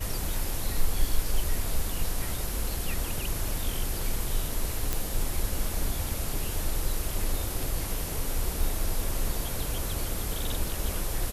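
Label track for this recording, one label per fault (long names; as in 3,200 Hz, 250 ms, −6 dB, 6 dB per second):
4.930000	4.930000	click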